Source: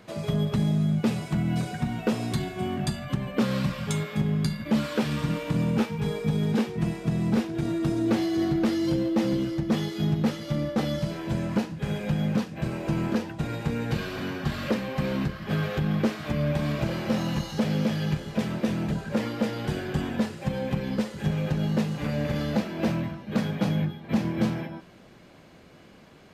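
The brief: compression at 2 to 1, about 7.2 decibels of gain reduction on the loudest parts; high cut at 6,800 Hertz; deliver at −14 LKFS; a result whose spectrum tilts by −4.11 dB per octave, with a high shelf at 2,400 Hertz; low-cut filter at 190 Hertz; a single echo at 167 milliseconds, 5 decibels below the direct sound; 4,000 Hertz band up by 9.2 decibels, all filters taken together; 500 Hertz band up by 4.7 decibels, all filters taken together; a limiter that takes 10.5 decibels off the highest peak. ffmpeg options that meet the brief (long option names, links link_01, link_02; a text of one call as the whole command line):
ffmpeg -i in.wav -af "highpass=190,lowpass=6800,equalizer=frequency=500:width_type=o:gain=5.5,highshelf=frequency=2400:gain=7.5,equalizer=frequency=4000:width_type=o:gain=5.5,acompressor=threshold=-32dB:ratio=2,alimiter=level_in=1.5dB:limit=-24dB:level=0:latency=1,volume=-1.5dB,aecho=1:1:167:0.562,volume=19dB" out.wav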